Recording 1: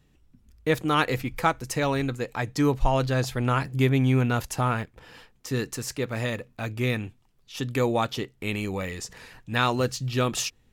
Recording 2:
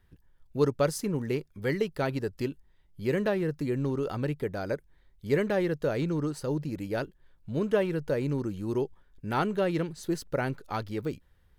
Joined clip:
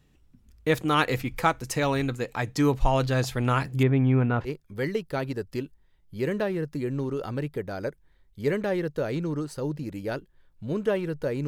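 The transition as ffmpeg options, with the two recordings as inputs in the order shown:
ffmpeg -i cue0.wav -i cue1.wav -filter_complex "[0:a]asettb=1/sr,asplit=3[link_01][link_02][link_03];[link_01]atrim=end=3.834[link_04];[link_02]atrim=start=3.83:end=4.5,asetpts=PTS-STARTPTS,afade=type=in:duration=0.004:curve=qsin,afade=type=out:start_time=0.666:duration=0.004:curve=qsin,lowpass=1700[link_05];[link_03]atrim=start=4.496[link_06];[link_04][link_05]acrossfade=duration=0.004:curve1=hsin:curve2=qsin[link_07];[link_07][link_06]acrossfade=duration=0.004:curve1=qsin:curve2=hsin,apad=whole_dur=11.47,atrim=end=11.47,atrim=end=4.5,asetpts=PTS-STARTPTS[link_08];[1:a]atrim=start=1.3:end=8.33,asetpts=PTS-STARTPTS[link_09];[link_08][link_09]acrossfade=duration=0.06:curve1=tri:curve2=tri" out.wav

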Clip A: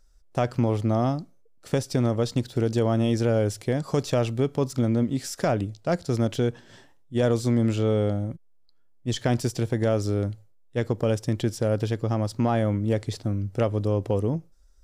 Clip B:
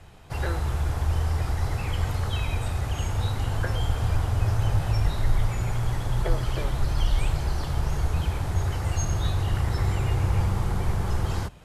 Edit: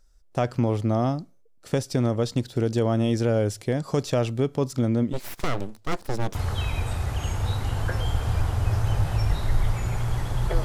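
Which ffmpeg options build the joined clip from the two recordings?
ffmpeg -i cue0.wav -i cue1.wav -filter_complex "[0:a]asplit=3[link_01][link_02][link_03];[link_01]afade=type=out:start_time=5.12:duration=0.02[link_04];[link_02]aeval=exprs='abs(val(0))':channel_layout=same,afade=type=in:start_time=5.12:duration=0.02,afade=type=out:start_time=6.35:duration=0.02[link_05];[link_03]afade=type=in:start_time=6.35:duration=0.02[link_06];[link_04][link_05][link_06]amix=inputs=3:normalize=0,apad=whole_dur=10.64,atrim=end=10.64,atrim=end=6.352[link_07];[1:a]atrim=start=2.098:end=6.39[link_08];[link_07][link_08]acrossfade=duration=0.004:curve1=hsin:curve2=hsin" out.wav

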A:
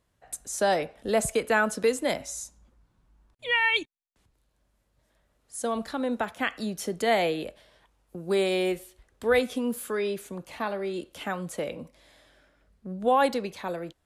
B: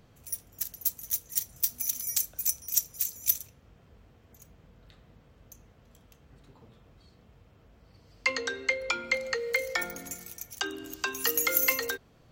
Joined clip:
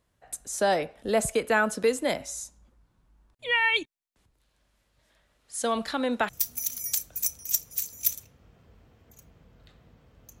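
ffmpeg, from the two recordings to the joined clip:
ffmpeg -i cue0.wav -i cue1.wav -filter_complex "[0:a]asettb=1/sr,asplit=3[link_01][link_02][link_03];[link_01]atrim=end=4.404[link_04];[link_02]atrim=start=4.4:end=6.29,asetpts=PTS-STARTPTS,afade=type=in:duration=0.004:curve=qsin,afade=type=out:start_time=1.886:duration=0.004:curve=qsin,equalizer=frequency=3200:width_type=o:width=2.8:gain=8[link_05];[link_03]atrim=start=6.286[link_06];[link_04][link_05]acrossfade=duration=0.004:curve1=hsin:curve2=qsin[link_07];[link_07][link_06]acrossfade=duration=0.004:curve1=qsin:curve2=hsin,apad=whole_dur=10.4,atrim=end=10.4,atrim=end=6.292[link_08];[1:a]atrim=start=1.518:end=5.63[link_09];[link_08][link_09]acrossfade=duration=0.004:curve1=hsin:curve2=hsin" out.wav

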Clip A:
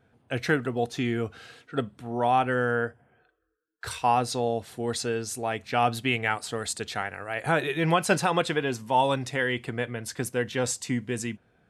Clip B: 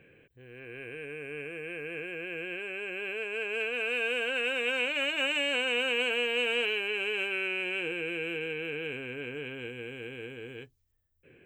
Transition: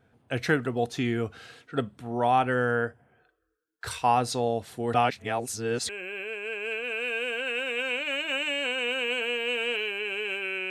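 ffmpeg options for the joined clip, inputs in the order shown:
ffmpeg -i cue0.wav -i cue1.wav -filter_complex "[0:a]apad=whole_dur=10.7,atrim=end=10.7,asplit=2[link_01][link_02];[link_01]atrim=end=4.942[link_03];[link_02]atrim=start=4.938:end=5.892,asetpts=PTS-STARTPTS,areverse[link_04];[1:a]atrim=start=2.778:end=7.59[link_05];[link_03][link_04]acrossfade=duration=0.004:curve1=hsin:curve2=hsin[link_06];[link_06][link_05]acrossfade=duration=0.004:curve1=hsin:curve2=hsin" out.wav

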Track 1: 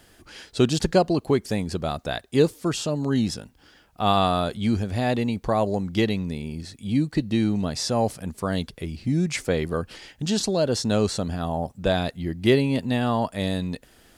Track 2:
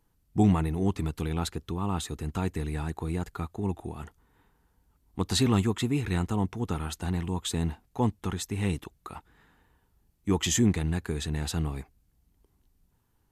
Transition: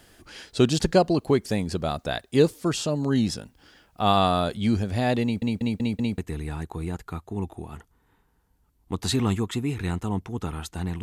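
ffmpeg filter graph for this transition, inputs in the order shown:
ffmpeg -i cue0.wav -i cue1.wav -filter_complex "[0:a]apad=whole_dur=11.02,atrim=end=11.02,asplit=5[link_01][link_02][link_03][link_04][link_05];[link_01]atrim=end=5.422[link_06];[link_02]atrim=start=5.228:end=5.422[link_07];[link_03]atrim=start=5.228:end=5.422[link_08];[link_04]atrim=start=5.228:end=5.422[link_09];[link_05]atrim=start=5.228:end=5.422[link_10];[1:a]atrim=start=2.448:end=7.29[link_11];[link_06][link_07]acrossfade=duration=0.004:curve1=hsin:curve2=hsin[link_12];[link_12][link_08]acrossfade=duration=0.004:curve1=hsin:curve2=hsin[link_13];[link_13][link_09]acrossfade=duration=0.004:curve1=hsin:curve2=hsin[link_14];[link_14][link_10]acrossfade=duration=0.004:curve1=hsin:curve2=hsin[link_15];[link_15][link_11]acrossfade=duration=0.004:curve1=hsin:curve2=hsin" out.wav

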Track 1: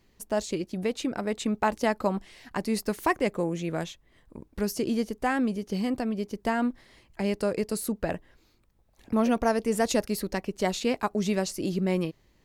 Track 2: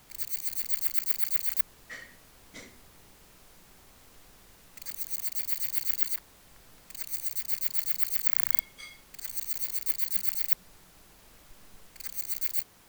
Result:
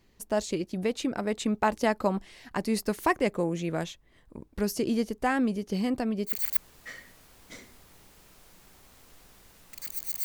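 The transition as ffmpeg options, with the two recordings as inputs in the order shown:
ffmpeg -i cue0.wav -i cue1.wav -filter_complex "[0:a]apad=whole_dur=10.24,atrim=end=10.24,atrim=end=6.36,asetpts=PTS-STARTPTS[link_01];[1:a]atrim=start=1.28:end=5.28,asetpts=PTS-STARTPTS[link_02];[link_01][link_02]acrossfade=duration=0.12:curve1=tri:curve2=tri" out.wav

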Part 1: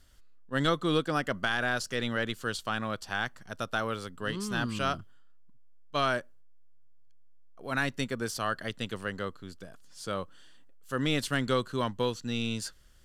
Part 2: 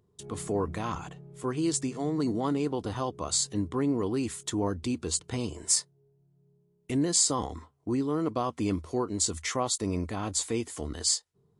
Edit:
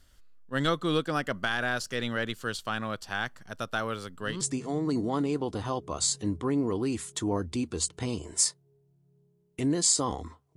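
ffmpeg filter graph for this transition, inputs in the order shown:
ffmpeg -i cue0.wav -i cue1.wav -filter_complex "[0:a]apad=whole_dur=10.56,atrim=end=10.56,atrim=end=4.412[link_01];[1:a]atrim=start=1.718:end=7.87[link_02];[link_01][link_02]acrossfade=duration=0.004:curve1=hsin:curve2=hsin" out.wav

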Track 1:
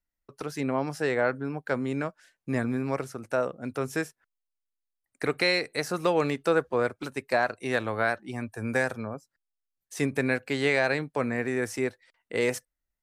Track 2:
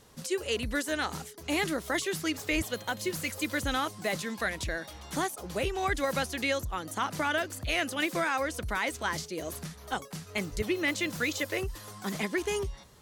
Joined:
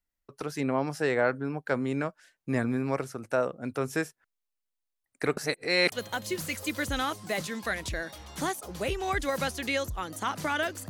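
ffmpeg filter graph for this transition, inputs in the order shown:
ffmpeg -i cue0.wav -i cue1.wav -filter_complex "[0:a]apad=whole_dur=10.89,atrim=end=10.89,asplit=2[link_01][link_02];[link_01]atrim=end=5.372[link_03];[link_02]atrim=start=5.368:end=5.922,asetpts=PTS-STARTPTS,areverse[link_04];[1:a]atrim=start=2.668:end=7.64[link_05];[link_03][link_04]acrossfade=duration=0.004:curve1=hsin:curve2=hsin[link_06];[link_06][link_05]acrossfade=duration=0.004:curve1=hsin:curve2=hsin" out.wav

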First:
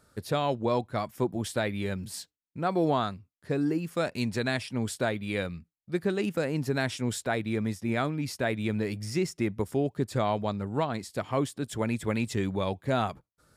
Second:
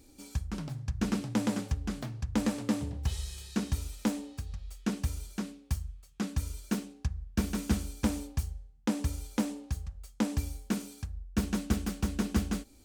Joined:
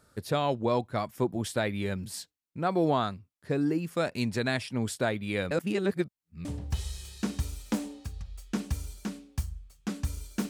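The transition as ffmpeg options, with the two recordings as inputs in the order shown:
ffmpeg -i cue0.wav -i cue1.wav -filter_complex "[0:a]apad=whole_dur=10.49,atrim=end=10.49,asplit=2[link_01][link_02];[link_01]atrim=end=5.512[link_03];[link_02]atrim=start=5.508:end=6.452,asetpts=PTS-STARTPTS,areverse[link_04];[1:a]atrim=start=2.778:end=6.82[link_05];[link_03][link_04]acrossfade=duration=0.004:curve1=hsin:curve2=hsin[link_06];[link_06][link_05]acrossfade=duration=0.004:curve1=hsin:curve2=hsin" out.wav

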